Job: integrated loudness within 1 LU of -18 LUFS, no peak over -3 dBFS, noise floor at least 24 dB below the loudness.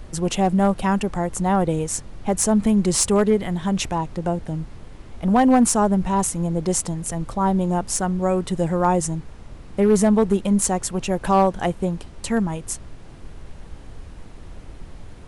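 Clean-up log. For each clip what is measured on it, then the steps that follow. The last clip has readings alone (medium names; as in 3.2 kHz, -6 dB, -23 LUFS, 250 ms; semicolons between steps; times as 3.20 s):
clipped samples 0.6%; clipping level -9.5 dBFS; noise floor -41 dBFS; noise floor target -45 dBFS; loudness -21.0 LUFS; peak level -9.5 dBFS; loudness target -18.0 LUFS
-> clip repair -9.5 dBFS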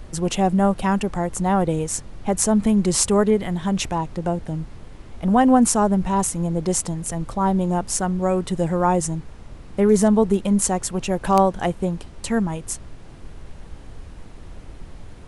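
clipped samples 0.0%; noise floor -41 dBFS; noise floor target -45 dBFS
-> noise print and reduce 6 dB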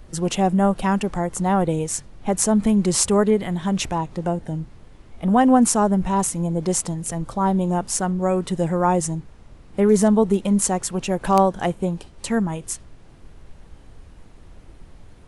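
noise floor -47 dBFS; loudness -21.0 LUFS; peak level -1.5 dBFS; loudness target -18.0 LUFS
-> trim +3 dB; peak limiter -3 dBFS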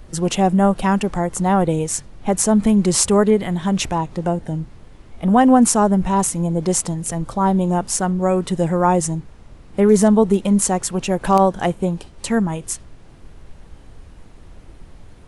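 loudness -18.0 LUFS; peak level -3.0 dBFS; noise floor -44 dBFS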